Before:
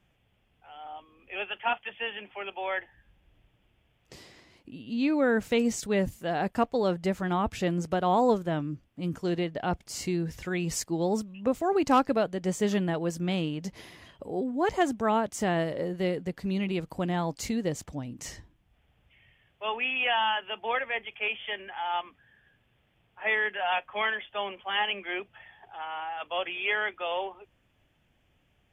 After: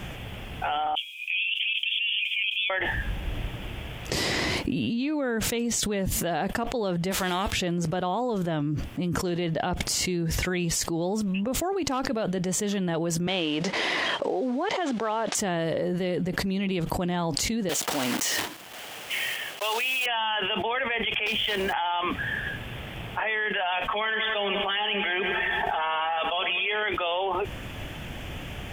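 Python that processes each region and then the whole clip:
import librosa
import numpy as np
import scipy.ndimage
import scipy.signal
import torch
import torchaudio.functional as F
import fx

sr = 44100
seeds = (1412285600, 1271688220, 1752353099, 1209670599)

y = fx.chain(x, sr, fx.cheby_ripple_highpass(hz=2300.0, ripple_db=3),
    fx.notch(hz=4500.0, q=9.1), at=(0.95, 2.7))
y = fx.envelope_flatten(y, sr, power=0.6, at=(7.1, 7.51), fade=0.02)
y = fx.peak_eq(y, sr, hz=150.0, db=-9.5, octaves=1.2, at=(7.1, 7.51), fade=0.02)
y = fx.chain(y, sr, fx.cvsd(bps=64000),
    fx.bandpass_edges(low_hz=390.0, high_hz=4200.0), at=(13.27, 15.35))
y = fx.chain(y, sr, fx.block_float(bits=3),
    fx.highpass(hz=420.0, slope=12),
    fx.peak_eq(hz=3000.0, db=3.0, octaves=0.23), at=(17.69, 20.06))
y = fx.chain(y, sr, fx.low_shelf(hz=310.0, db=12.0),
    fx.quant_float(bits=2),
    fx.transformer_sat(knee_hz=1500.0), at=(21.26, 21.73))
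y = fx.chain(y, sr, fx.comb(ms=4.5, depth=0.6),
    fx.echo_feedback(ms=94, feedback_pct=56, wet_db=-16), at=(23.84, 26.83))
y = fx.dynamic_eq(y, sr, hz=3400.0, q=2.6, threshold_db=-51.0, ratio=4.0, max_db=5)
y = fx.env_flatten(y, sr, amount_pct=100)
y = y * librosa.db_to_amplitude(-8.0)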